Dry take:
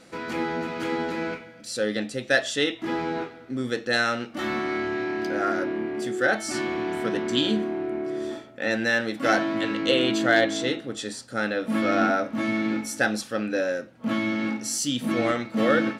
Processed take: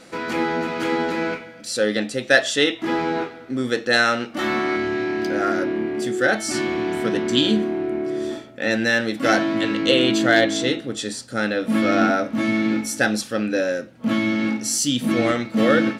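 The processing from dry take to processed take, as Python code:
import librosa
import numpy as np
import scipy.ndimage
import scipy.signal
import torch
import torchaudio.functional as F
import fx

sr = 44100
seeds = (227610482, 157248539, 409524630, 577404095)

y = fx.peak_eq(x, sr, hz=fx.steps((0.0, 89.0), (4.76, 1000.0)), db=-4.0, octaves=2.1)
y = y * librosa.db_to_amplitude(6.0)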